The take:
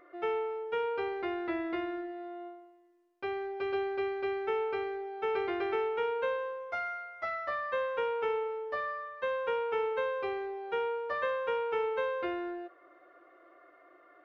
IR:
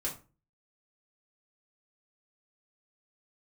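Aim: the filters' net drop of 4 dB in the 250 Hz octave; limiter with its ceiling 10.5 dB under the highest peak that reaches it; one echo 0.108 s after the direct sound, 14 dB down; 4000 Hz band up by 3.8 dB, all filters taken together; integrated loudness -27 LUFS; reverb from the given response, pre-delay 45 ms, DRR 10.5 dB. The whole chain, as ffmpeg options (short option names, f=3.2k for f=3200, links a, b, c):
-filter_complex "[0:a]equalizer=f=250:t=o:g=-8,equalizer=f=4k:t=o:g=5.5,alimiter=level_in=8.5dB:limit=-24dB:level=0:latency=1,volume=-8.5dB,aecho=1:1:108:0.2,asplit=2[a][b];[1:a]atrim=start_sample=2205,adelay=45[c];[b][c]afir=irnorm=-1:irlink=0,volume=-13dB[d];[a][d]amix=inputs=2:normalize=0,volume=12.5dB"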